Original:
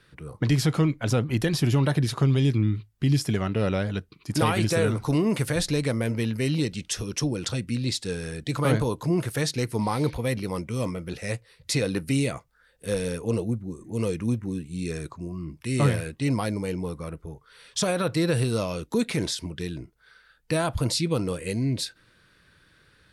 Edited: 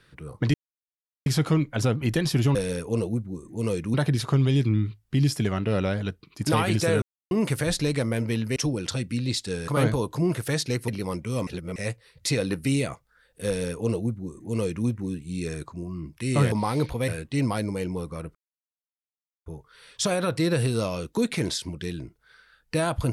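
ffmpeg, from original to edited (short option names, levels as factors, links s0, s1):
-filter_complex "[0:a]asplit=14[s0][s1][s2][s3][s4][s5][s6][s7][s8][s9][s10][s11][s12][s13];[s0]atrim=end=0.54,asetpts=PTS-STARTPTS,afade=t=out:st=0.536:d=0.004:c=hsin,apad=pad_dur=0.72[s14];[s1]atrim=start=0.54:end=1.832,asetpts=PTS-STARTPTS,afade=t=in:d=0.004:c=hsin[s15];[s2]atrim=start=12.908:end=14.302[s16];[s3]atrim=start=1.828:end=4.91,asetpts=PTS-STARTPTS,afade=t=out:st=3.078:d=0.004:c=hsin[s17];[s4]atrim=start=4.91:end=5.2,asetpts=PTS-STARTPTS,volume=0[s18];[s5]atrim=start=5.2:end=6.452,asetpts=PTS-STARTPTS,afade=t=in:d=0.004:c=hsin[s19];[s6]atrim=start=7.138:end=8.262[s20];[s7]atrim=start=8.558:end=9.762[s21];[s8]atrim=start=10.318:end=10.912[s22];[s9]atrim=start=10.908:end=11.202,asetpts=PTS-STARTPTS,areverse[s23];[s10]atrim=start=11.198:end=15.962[s24];[s11]atrim=start=9.758:end=10.322[s25];[s12]atrim=start=15.958:end=17.23,asetpts=PTS-STARTPTS,afade=t=out:st=1.268:d=0.004:c=hsin,apad=pad_dur=1.11[s26];[s13]atrim=start=17.23,asetpts=PTS-STARTPTS,afade=t=in:d=0.004:c=hsin[s27];[s14][s15]concat=n=2:v=0:a=1[s28];[s28][s16]acrossfade=d=0.004:c1=hsin:c2=hsin[s29];[s17][s18][s19]concat=n=3:v=0:a=1[s30];[s29][s30]acrossfade=d=0.004:c1=hsin:c2=hsin[s31];[s31][s20]acrossfade=d=0.004:c1=hsin:c2=hsin[s32];[s32][s21]acrossfade=d=0.004:c1=hsin:c2=hsin[s33];[s33][s22]acrossfade=d=0.004:c1=hsin:c2=hsin[s34];[s34][s23]acrossfade=d=0.004:c1=hsin:c2=hsin[s35];[s35][s24]acrossfade=d=0.004:c1=hsin:c2=hsin[s36];[s36][s25]acrossfade=d=0.004:c1=hsin:c2=hsin[s37];[s26][s27]concat=n=2:v=0:a=1[s38];[s37][s38]acrossfade=d=0.004:c1=hsin:c2=hsin"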